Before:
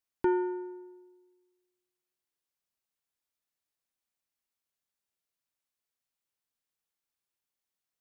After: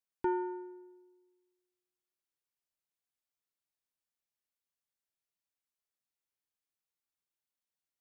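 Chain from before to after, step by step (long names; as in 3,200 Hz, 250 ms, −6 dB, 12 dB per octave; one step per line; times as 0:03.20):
dynamic equaliser 930 Hz, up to +5 dB, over −47 dBFS
level −6 dB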